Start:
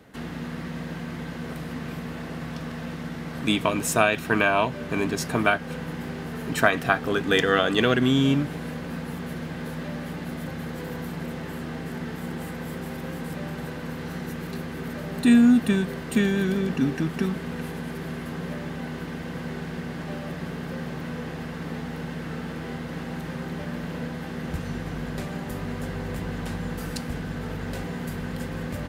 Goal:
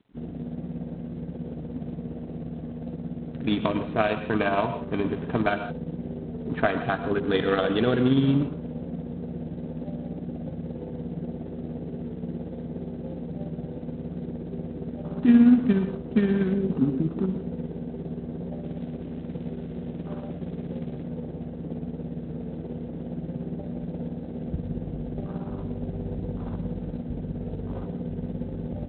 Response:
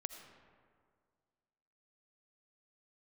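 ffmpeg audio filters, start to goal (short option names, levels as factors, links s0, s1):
-filter_complex "[0:a]afwtdn=0.02,equalizer=f=2200:t=o:w=2.1:g=-9,tremolo=f=17:d=0.47,asettb=1/sr,asplit=3[s0][s1][s2];[s0]atrim=end=18.634[s3];[s1]atrim=start=18.63:end=21.03,asetpts=PTS-STARTPTS,afade=t=in:d=0.004:c=qsin,afade=t=out:st=2.396:d=0.004:c=qsin,acrusher=bits=6:mode=log:mix=0:aa=0.000001[s4];[s2]atrim=start=21.026[s5];[s3][s4]acrossfade=d=0.004:c1=hsin:c2=qsin[s6];[s6][s5]acrossfade=d=0.004:c1=qsin:c2=hsin[s7];[1:a]atrim=start_sample=2205,afade=t=out:st=0.17:d=0.01,atrim=end_sample=7938,asetrate=32634,aresample=44100[s8];[s7][s8]afir=irnorm=-1:irlink=0,volume=1.58" -ar 8000 -c:a adpcm_g726 -b:a 24k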